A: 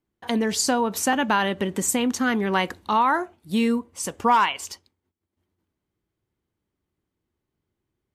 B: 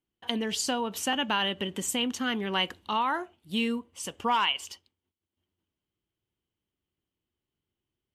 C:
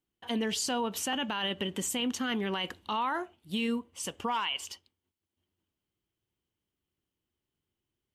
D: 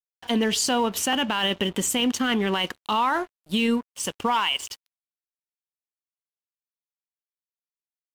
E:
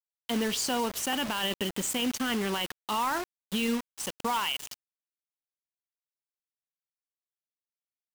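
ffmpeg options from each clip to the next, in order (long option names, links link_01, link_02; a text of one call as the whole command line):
ffmpeg -i in.wav -af "equalizer=frequency=3000:width=3.3:gain=13,volume=-8dB" out.wav
ffmpeg -i in.wav -af "alimiter=limit=-23dB:level=0:latency=1:release=13" out.wav
ffmpeg -i in.wav -af "aeval=exprs='sgn(val(0))*max(abs(val(0))-0.00299,0)':channel_layout=same,volume=9dB" out.wav
ffmpeg -i in.wav -af "acrusher=bits=4:mix=0:aa=0.000001,volume=-6.5dB" out.wav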